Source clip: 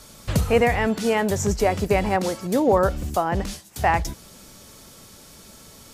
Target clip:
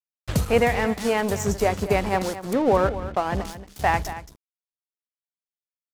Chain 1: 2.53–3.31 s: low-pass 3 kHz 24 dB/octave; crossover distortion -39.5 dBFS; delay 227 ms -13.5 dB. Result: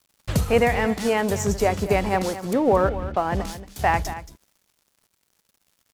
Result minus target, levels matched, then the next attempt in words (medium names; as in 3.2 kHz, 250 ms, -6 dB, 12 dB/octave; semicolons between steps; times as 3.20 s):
crossover distortion: distortion -6 dB
2.53–3.31 s: low-pass 3 kHz 24 dB/octave; crossover distortion -32.5 dBFS; delay 227 ms -13.5 dB